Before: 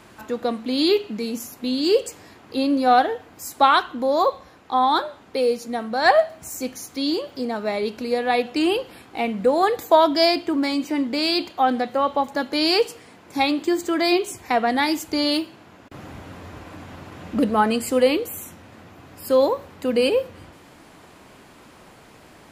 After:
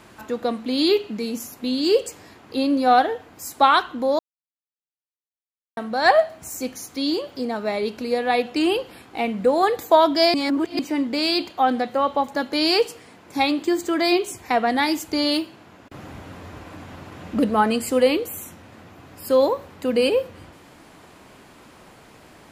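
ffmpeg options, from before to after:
-filter_complex "[0:a]asplit=5[a][b][c][d][e];[a]atrim=end=4.19,asetpts=PTS-STARTPTS,afade=t=out:st=4.186:d=0.004:c=hsin[f];[b]atrim=start=4.19:end=5.77,asetpts=PTS-STARTPTS,volume=0[g];[c]atrim=start=5.77:end=10.342,asetpts=PTS-STARTPTS,afade=t=in:d=0.004:c=hsin[h];[d]atrim=start=10.338:end=10.792,asetpts=PTS-STARTPTS,areverse[i];[e]atrim=start=10.788[j];[f][g][h]concat=n=3:v=0:a=1[k];[k][i]acrossfade=d=0.004:c1=hsin:c2=hsin[l];[l][j]acrossfade=d=0.004:c1=hsin:c2=hsin"

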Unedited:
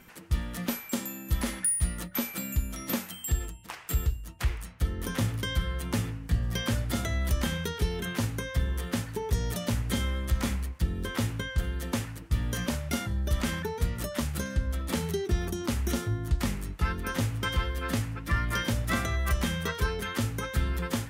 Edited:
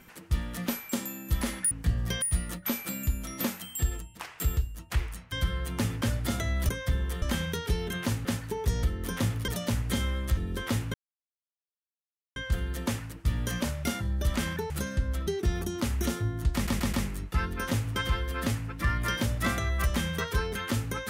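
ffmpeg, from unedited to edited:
-filter_complex "[0:a]asplit=17[a][b][c][d][e][f][g][h][i][j][k][l][m][n][o][p][q];[a]atrim=end=1.712[r];[b]atrim=start=6.158:end=6.672[s];[c]atrim=start=1.708:end=4.812[t];[d]atrim=start=5.458:end=6.162[u];[e]atrim=start=6.668:end=7.342[v];[f]atrim=start=8.368:end=8.902[w];[g]atrim=start=7.338:end=8.372[x];[h]atrim=start=8.898:end=9.482[y];[i]atrim=start=4.808:end=5.462[z];[j]atrim=start=9.478:end=10.372[aa];[k]atrim=start=10.848:end=11.42,asetpts=PTS-STARTPTS,afade=t=out:st=0.568:d=0.004:c=hsin,apad=pad_dur=1.42[ab];[l]atrim=start=11.42:end=13.762,asetpts=PTS-STARTPTS,afade=t=in:d=0.004:c=hsin[ac];[m]atrim=start=14.288:end=14.862[ad];[n]atrim=start=15.128:end=16.532[ae];[o]atrim=start=16.398:end=16.532[af];[p]atrim=start=16.398:end=16.532[ag];[q]atrim=start=16.398[ah];[r][s]acrossfade=d=0.004:c1=hsin:c2=hsin[ai];[ai][t]acrossfade=d=0.004:c1=hsin:c2=hsin[aj];[aj][u]acrossfade=d=0.004:c1=hsin:c2=hsin[ak];[ak][v]acrossfade=d=0.004:c1=hsin:c2=hsin[al];[al][w]acrossfade=d=0.004:c1=hsin:c2=hsin[am];[am][x]acrossfade=d=0.004:c1=hsin:c2=hsin[an];[an][y]acrossfade=d=0.004:c1=hsin:c2=hsin[ao];[ao][z]acrossfade=d=0.004:c1=hsin:c2=hsin[ap];[ap][aa]acrossfade=d=0.004:c1=hsin:c2=hsin[aq];[ab][ac]concat=n=2:v=0:a=1[ar];[aq][ar]acrossfade=d=0.004:c1=hsin:c2=hsin[as];[as][ad]acrossfade=d=0.004:c1=hsin:c2=hsin[at];[at][ae]acrossfade=d=0.004:c1=hsin:c2=hsin[au];[au][af]acrossfade=d=0.004:c1=hsin:c2=hsin[av];[av][ag]acrossfade=d=0.004:c1=hsin:c2=hsin[aw];[aw][ah]acrossfade=d=0.004:c1=hsin:c2=hsin"

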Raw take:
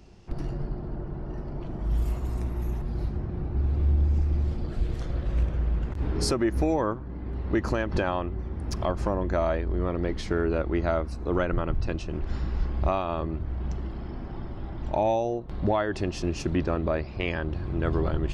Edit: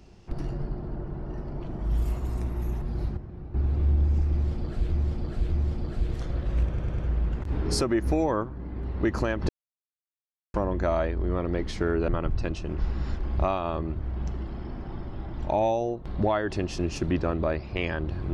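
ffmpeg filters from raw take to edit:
-filter_complex "[0:a]asplit=13[a][b][c][d][e][f][g][h][i][j][k][l][m];[a]atrim=end=3.172[n];[b]atrim=start=3.168:end=3.542,asetpts=PTS-STARTPTS,volume=-8.5dB[o];[c]atrim=start=3.538:end=4.922[p];[d]atrim=start=4.318:end=4.922[q];[e]atrim=start=4.318:end=5.582[r];[f]atrim=start=5.478:end=5.582[s];[g]atrim=start=5.478:end=5.582[t];[h]atrim=start=5.478:end=7.99,asetpts=PTS-STARTPTS,afade=t=out:st=2.508:d=0.004:c=hsin[u];[i]atrim=start=7.99:end=9.04,asetpts=PTS-STARTPTS,volume=0[v];[j]atrim=start=9.04:end=10.582,asetpts=PTS-STARTPTS,afade=t=in:d=0.004:c=hsin[w];[k]atrim=start=11.518:end=12.222[x];[l]atrim=start=12.218:end=12.672,asetpts=PTS-STARTPTS,areverse[y];[m]atrim=start=12.668[z];[n][o]acrossfade=d=0.004:c1=hsin:c2=hsin[aa];[aa][p]acrossfade=d=0.004:c1=hsin:c2=hsin[ab];[ab][q]acrossfade=d=0.004:c1=hsin:c2=hsin[ac];[ac][r]acrossfade=d=0.004:c1=hsin:c2=hsin[ad];[ad][s]acrossfade=d=0.004:c1=hsin:c2=hsin[ae];[ae][t]acrossfade=d=0.004:c1=hsin:c2=hsin[af];[u][v][w]concat=n=3:v=0:a=1[ag];[af][ag]acrossfade=d=0.004:c1=hsin:c2=hsin[ah];[ah][x]acrossfade=d=0.004:c1=hsin:c2=hsin[ai];[ai][y]acrossfade=d=0.004:c1=hsin:c2=hsin[aj];[aj][z]acrossfade=d=0.004:c1=hsin:c2=hsin"

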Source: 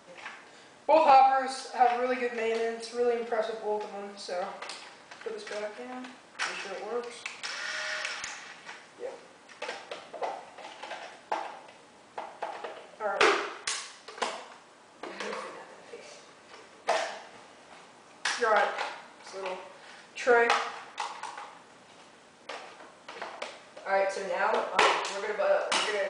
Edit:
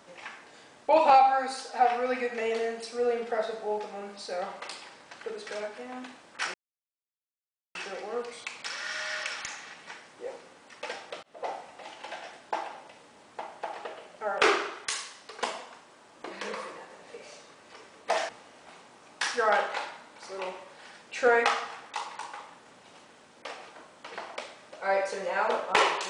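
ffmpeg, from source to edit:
-filter_complex "[0:a]asplit=4[a][b][c][d];[a]atrim=end=6.54,asetpts=PTS-STARTPTS,afade=t=out:st=6.536:d=0.004:c=hsin,apad=pad_dur=1.21[e];[b]atrim=start=6.54:end=10.02,asetpts=PTS-STARTPTS,afade=t=in:d=0.004:c=hsin,afade=t=out:st=3.476:d=0.004:c=hsin[f];[c]atrim=start=10.02:end=17.082,asetpts=PTS-STARTPTS,afade=t=in:d=0.26[g];[d]atrim=start=17.328[h];[e][f][g]concat=n=3:v=0:a=1[i];[i][h]acrossfade=d=0.004:c1=hsin:c2=hsin"

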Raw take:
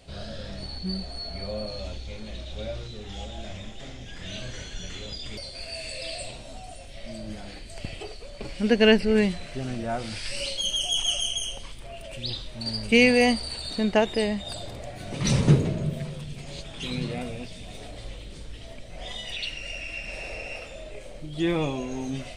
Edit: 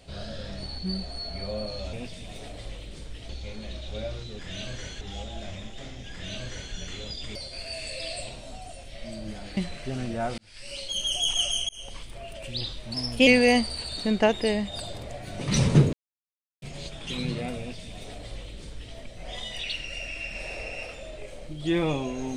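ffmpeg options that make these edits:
-filter_complex "[0:a]asplit=12[a][b][c][d][e][f][g][h][i][j][k][l];[a]atrim=end=1.932[m];[b]atrim=start=17.318:end=18.682[n];[c]atrim=start=1.928:end=3.032[o];[d]atrim=start=4.138:end=4.762[p];[e]atrim=start=3.028:end=7.592[q];[f]atrim=start=9.258:end=10.07,asetpts=PTS-STARTPTS,afade=t=out:st=0.808:d=0.004:c=hsin[r];[g]atrim=start=10.07:end=11.38,asetpts=PTS-STARTPTS,afade=t=in:d=0.78,afade=t=out:st=1.306:d=0.004:c=hsin[s];[h]atrim=start=11.38:end=12.634,asetpts=PTS-STARTPTS,afade=t=in:d=0.25[t];[i]atrim=start=12.63:end=13,asetpts=PTS-STARTPTS,asetrate=49392,aresample=44100[u];[j]atrim=start=12.996:end=15.66,asetpts=PTS-STARTPTS,afade=t=out:st=2.66:d=0.004:c=hsin[v];[k]atrim=start=15.66:end=16.35,asetpts=PTS-STARTPTS,volume=0[w];[l]atrim=start=16.35,asetpts=PTS-STARTPTS,afade=t=in:d=0.004:c=hsin[x];[m][n]acrossfade=d=0.004:c1=hsin:c2=hsin[y];[y][o]acrossfade=d=0.004:c1=hsin:c2=hsin[z];[z][p]acrossfade=d=0.004:c1=hsin:c2=hsin[aa];[aa][q]acrossfade=d=0.004:c1=hsin:c2=hsin[ab];[r][s][t]concat=n=3:v=0:a=1[ac];[ab][ac]acrossfade=d=0.004:c1=hsin:c2=hsin[ad];[ad][u]acrossfade=d=0.004:c1=hsin:c2=hsin[ae];[v][w][x]concat=n=3:v=0:a=1[af];[ae][af]acrossfade=d=0.004:c1=hsin:c2=hsin"

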